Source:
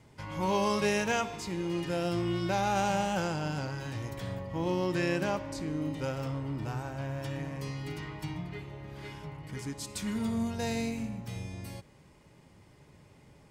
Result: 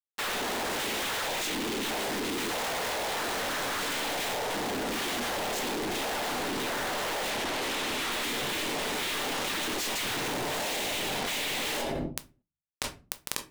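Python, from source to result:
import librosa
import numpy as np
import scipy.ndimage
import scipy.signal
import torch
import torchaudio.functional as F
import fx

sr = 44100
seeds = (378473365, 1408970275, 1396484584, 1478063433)

y = fx.cabinet(x, sr, low_hz=370.0, low_slope=24, high_hz=4200.0, hz=(490.0, 930.0, 1500.0, 2400.0, 3900.0), db=(-3, -6, 4, 6, 7))
y = fx.noise_vocoder(y, sr, seeds[0], bands=6)
y = fx.fuzz(y, sr, gain_db=54.0, gate_db=-52.0)
y = fx.air_absorb(y, sr, metres=73.0, at=(7.3, 8.12))
y = fx.room_shoebox(y, sr, seeds[1], volume_m3=140.0, walls='furnished', distance_m=0.42)
y = np.clip(10.0 ** (26.0 / 20.0) * y, -1.0, 1.0) / 10.0 ** (26.0 / 20.0)
y = fx.env_flatten(y, sr, amount_pct=100)
y = y * 10.0 ** (-5.5 / 20.0)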